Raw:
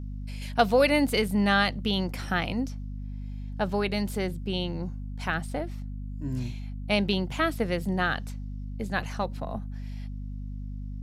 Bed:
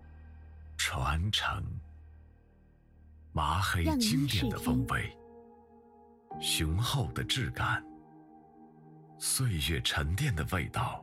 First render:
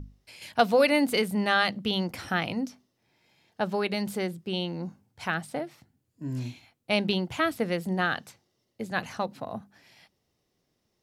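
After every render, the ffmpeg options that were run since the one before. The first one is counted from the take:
-af "bandreject=f=50:t=h:w=6,bandreject=f=100:t=h:w=6,bandreject=f=150:t=h:w=6,bandreject=f=200:t=h:w=6,bandreject=f=250:t=h:w=6"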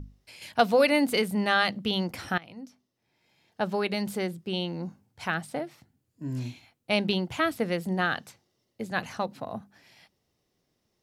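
-filter_complex "[0:a]asplit=2[a][b];[a]atrim=end=2.38,asetpts=PTS-STARTPTS,afade=t=out:st=2.376:d=0.004:c=hsin:silence=0.0841395[c];[b]atrim=start=2.38,asetpts=PTS-STARTPTS,afade=t=in:d=1.26:silence=0.0841395[d];[c][d]concat=n=2:v=0:a=1"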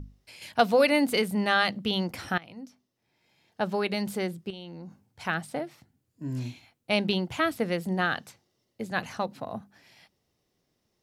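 -filter_complex "[0:a]asettb=1/sr,asplit=3[a][b][c];[a]atrim=end=4.504[d];[b]atrim=start=4.5:end=5.25,asetpts=PTS-STARTPTS,afade=t=in:d=0.004:c=qsin,afade=t=out:st=0.746:d=0.004:c=qsin,acompressor=threshold=-39dB:ratio=6:attack=3.2:release=140:knee=1:detection=peak[e];[c]atrim=start=5.246[f];[d][e]acrossfade=d=0.004:c1=hsin:c2=qsin[g];[g][f]acrossfade=d=0.004:c1=qsin:c2=hsin"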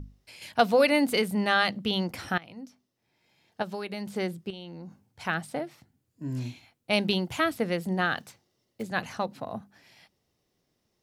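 -filter_complex "[0:a]asettb=1/sr,asplit=3[a][b][c];[a]atrim=end=3.624[d];[b]atrim=start=3.62:end=4.16,asetpts=PTS-STARTPTS,afade=t=in:d=0.004:c=qsin,afade=t=out:st=0.536:d=0.004:c=qsin,acrossover=split=2900|7600[e][f][g];[e]acompressor=threshold=-33dB:ratio=4[h];[f]acompressor=threshold=-48dB:ratio=4[i];[g]acompressor=threshold=-60dB:ratio=4[j];[h][i][j]amix=inputs=3:normalize=0[k];[c]atrim=start=4.156[l];[d][k]acrossfade=d=0.004:c1=hsin:c2=qsin[m];[m][l]acrossfade=d=0.004:c1=qsin:c2=hsin,asettb=1/sr,asplit=3[n][o][p];[n]atrim=end=6.934[q];[o]atrim=start=6.93:end=7.44,asetpts=PTS-STARTPTS,afade=t=in:d=0.004:c=qsin,afade=t=out:st=0.506:d=0.004:c=qsin,highshelf=f=6.9k:g=8[r];[p]atrim=start=7.436[s];[q][r]acrossfade=d=0.004:c1=hsin:c2=qsin[t];[t][s]acrossfade=d=0.004:c1=qsin:c2=hsin,asettb=1/sr,asplit=3[u][v][w];[u]atrim=end=8.184[x];[v]atrim=start=8.18:end=8.83,asetpts=PTS-STARTPTS,afade=t=in:d=0.004:c=qsin,afade=t=out:st=0.646:d=0.004:c=qsin,acrusher=bits=5:mode=log:mix=0:aa=0.000001[y];[w]atrim=start=8.826[z];[x][y]acrossfade=d=0.004:c1=hsin:c2=qsin[aa];[aa][z]acrossfade=d=0.004:c1=qsin:c2=hsin"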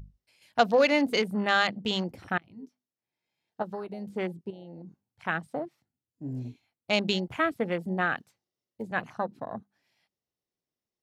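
-af "afwtdn=0.0158,lowshelf=f=170:g=-5"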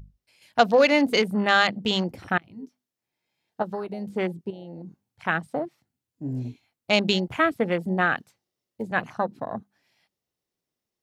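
-af "dynaudnorm=f=190:g=3:m=5dB"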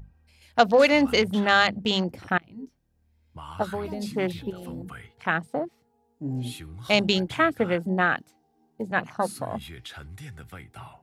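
-filter_complex "[1:a]volume=-10.5dB[a];[0:a][a]amix=inputs=2:normalize=0"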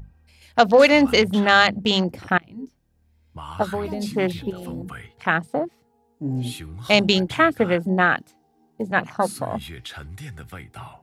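-af "volume=4.5dB,alimiter=limit=-1dB:level=0:latency=1"

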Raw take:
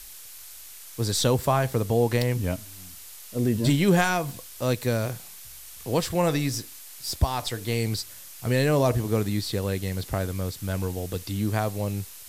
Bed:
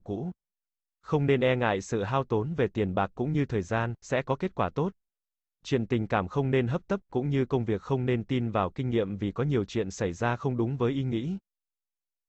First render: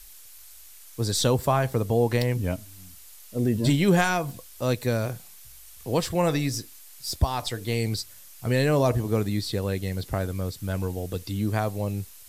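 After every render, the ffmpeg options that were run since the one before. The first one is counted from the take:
-af "afftdn=nr=6:nf=-44"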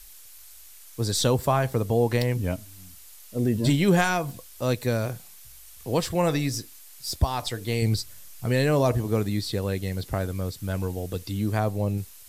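-filter_complex "[0:a]asettb=1/sr,asplit=3[a][b][c];[a]atrim=end=7.824[d];[b]atrim=start=7.82:end=8.46,asetpts=PTS-STARTPTS,afade=t=in:d=0.004:c=qsin,afade=t=out:st=0.636:d=0.004:c=qsin,lowshelf=f=220:g=7[e];[c]atrim=start=8.456[f];[d][e]acrossfade=d=0.004:c1=hsin:c2=qsin[g];[g][f]acrossfade=d=0.004:c1=qsin:c2=hsin,asettb=1/sr,asplit=3[h][i][j];[h]atrim=end=11.584[k];[i]atrim=start=11.58:end=11.98,asetpts=PTS-STARTPTS,afade=t=in:d=0.004:c=qsin,afade=t=out:st=0.396:d=0.004:c=qsin,tiltshelf=f=970:g=3[l];[j]atrim=start=11.976[m];[k][l]acrossfade=d=0.004:c1=hsin:c2=qsin[n];[n][m]acrossfade=d=0.004:c1=qsin:c2=hsin"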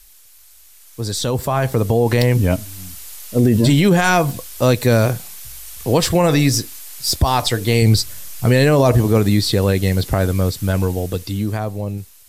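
-af "alimiter=limit=-18dB:level=0:latency=1:release=39,dynaudnorm=f=240:g=13:m=13dB"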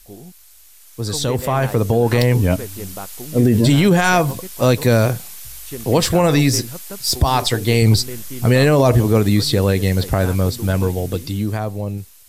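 -filter_complex "[1:a]volume=-5.5dB[a];[0:a][a]amix=inputs=2:normalize=0"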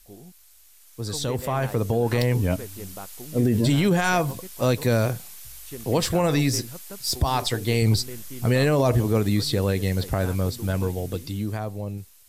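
-af "volume=-7dB"

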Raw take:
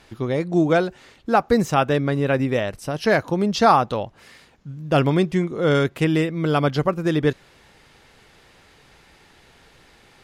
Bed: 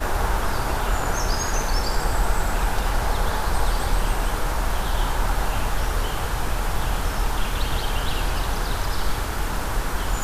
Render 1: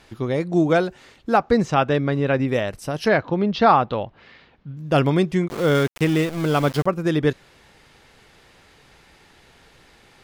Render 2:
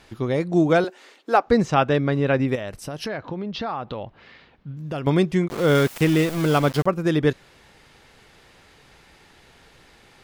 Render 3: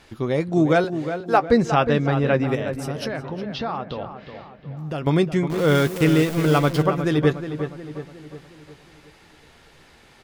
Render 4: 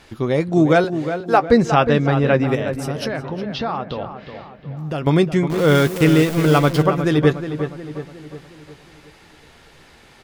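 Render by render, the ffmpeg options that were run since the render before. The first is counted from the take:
-filter_complex "[0:a]asettb=1/sr,asplit=3[a][b][c];[a]atrim=end=1.374[d];[b]atrim=start=1.37:end=2.48,asetpts=PTS-STARTPTS,afade=t=in:d=0.004:c=qsin,afade=t=out:st=1.106:d=0.004:c=qsin,lowpass=5.4k[e];[c]atrim=start=2.476[f];[d][e]acrossfade=d=0.004:c1=hsin:c2=qsin[g];[g][f]acrossfade=d=0.004:c1=qsin:c2=hsin,asettb=1/sr,asplit=3[h][i][j];[h]atrim=end=3.084[k];[i]atrim=start=3.08:end=4.77,asetpts=PTS-STARTPTS,afade=t=in:d=0.004:c=qsin,afade=t=out:st=1.686:d=0.004:c=qsin,lowpass=f=4k:w=0.5412,lowpass=f=4k:w=1.3066[l];[j]atrim=start=4.766[m];[k][l]acrossfade=d=0.004:c1=hsin:c2=qsin[n];[n][m]acrossfade=d=0.004:c1=qsin:c2=hsin,asettb=1/sr,asplit=3[o][p][q];[o]atrim=end=5.484[r];[p]atrim=start=5.48:end=6.86,asetpts=PTS-STARTPTS,afade=t=in:d=0.004:c=qsin,afade=t=out:st=1.376:d=0.004:c=qsin,aeval=exprs='val(0)*gte(abs(val(0)),0.0376)':c=same[s];[q]atrim=start=6.856[t];[r][s]acrossfade=d=0.004:c1=hsin:c2=qsin[u];[u][t]acrossfade=d=0.004:c1=qsin:c2=hsin"
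-filter_complex "[0:a]asettb=1/sr,asplit=3[a][b][c];[a]atrim=end=0.844[d];[b]atrim=start=0.84:end=1.46,asetpts=PTS-STARTPTS,afade=t=in:d=0.004:c=qsin,afade=t=out:st=0.616:d=0.004:c=qsin,highpass=f=300:w=0.5412,highpass=f=300:w=1.3066[e];[c]atrim=start=1.456[f];[d][e]acrossfade=d=0.004:c1=hsin:c2=qsin[g];[g][f]acrossfade=d=0.004:c1=qsin:c2=hsin,asettb=1/sr,asplit=3[h][i][j];[h]atrim=end=2.554[k];[i]atrim=start=2.55:end=5.07,asetpts=PTS-STARTPTS,afade=t=in:d=0.004:c=qsin,afade=t=out:st=2.516:d=0.004:c=qsin,acompressor=threshold=-27dB:ratio=4:attack=3.2:release=140:knee=1:detection=peak[l];[j]atrim=start=5.066[m];[k][l]acrossfade=d=0.004:c1=hsin:c2=qsin[n];[n][m]acrossfade=d=0.004:c1=qsin:c2=hsin,asettb=1/sr,asplit=3[o][p][q];[o]atrim=end=5.694[r];[p]atrim=start=5.69:end=6.58,asetpts=PTS-STARTPTS,afade=t=in:d=0.004:c=qsin,afade=t=out:st=0.886:d=0.004:c=qsin,aeval=exprs='val(0)+0.5*0.0316*sgn(val(0))':c=same[s];[q]atrim=start=6.576[t];[r][s]acrossfade=d=0.004:c1=hsin:c2=qsin[u];[u][t]acrossfade=d=0.004:c1=qsin:c2=hsin"
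-filter_complex "[0:a]asplit=2[a][b];[b]adelay=13,volume=-12.5dB[c];[a][c]amix=inputs=2:normalize=0,asplit=2[d][e];[e]adelay=361,lowpass=f=2.3k:p=1,volume=-9dB,asplit=2[f][g];[g]adelay=361,lowpass=f=2.3k:p=1,volume=0.5,asplit=2[h][i];[i]adelay=361,lowpass=f=2.3k:p=1,volume=0.5,asplit=2[j][k];[k]adelay=361,lowpass=f=2.3k:p=1,volume=0.5,asplit=2[l][m];[m]adelay=361,lowpass=f=2.3k:p=1,volume=0.5,asplit=2[n][o];[o]adelay=361,lowpass=f=2.3k:p=1,volume=0.5[p];[f][h][j][l][n][p]amix=inputs=6:normalize=0[q];[d][q]amix=inputs=2:normalize=0"
-af "volume=3.5dB,alimiter=limit=-2dB:level=0:latency=1"

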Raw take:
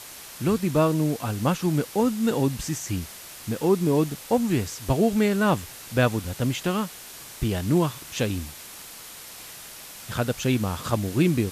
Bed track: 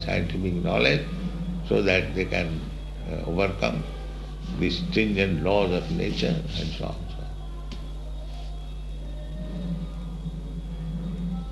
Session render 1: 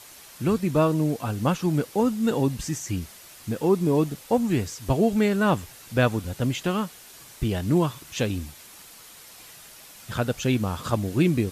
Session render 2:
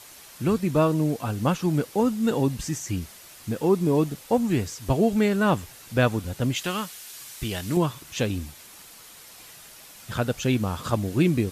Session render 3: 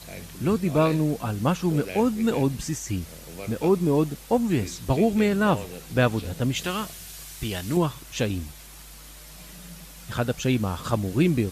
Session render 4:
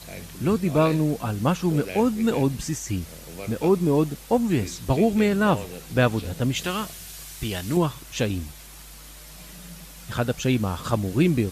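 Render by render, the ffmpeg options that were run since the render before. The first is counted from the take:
-af "afftdn=nr=6:nf=-42"
-filter_complex "[0:a]asettb=1/sr,asplit=3[a][b][c];[a]atrim=end=6.564[d];[b]atrim=start=6.56:end=7.77,asetpts=PTS-STARTPTS,afade=t=in:d=0.004:c=qsin,afade=t=out:st=1.206:d=0.004:c=qsin,tiltshelf=f=1.2k:g=-6[e];[c]atrim=start=7.766[f];[d][e]acrossfade=d=0.004:c1=hsin:c2=qsin[g];[g][f]acrossfade=d=0.004:c1=qsin:c2=hsin"
-filter_complex "[1:a]volume=-14.5dB[a];[0:a][a]amix=inputs=2:normalize=0"
-af "volume=1dB"

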